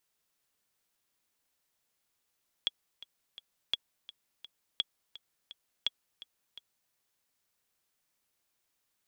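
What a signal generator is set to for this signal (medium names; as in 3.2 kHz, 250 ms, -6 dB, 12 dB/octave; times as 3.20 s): metronome 169 bpm, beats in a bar 3, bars 4, 3.35 kHz, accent 18 dB -15.5 dBFS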